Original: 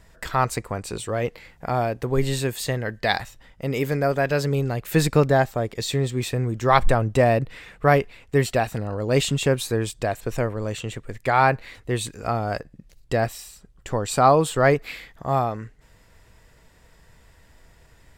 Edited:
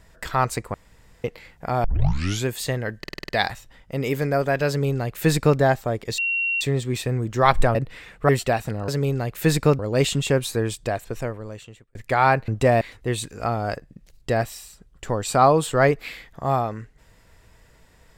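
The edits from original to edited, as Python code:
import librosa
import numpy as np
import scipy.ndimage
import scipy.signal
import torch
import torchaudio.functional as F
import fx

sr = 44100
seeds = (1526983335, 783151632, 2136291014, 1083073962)

y = fx.edit(x, sr, fx.room_tone_fill(start_s=0.74, length_s=0.5),
    fx.tape_start(start_s=1.84, length_s=0.63),
    fx.stutter(start_s=2.99, slice_s=0.05, count=7),
    fx.duplicate(start_s=4.38, length_s=0.91, to_s=8.95),
    fx.insert_tone(at_s=5.88, length_s=0.43, hz=2740.0, db=-20.5),
    fx.move(start_s=7.02, length_s=0.33, to_s=11.64),
    fx.cut(start_s=7.89, length_s=0.47),
    fx.fade_out_span(start_s=9.98, length_s=1.13), tone=tone)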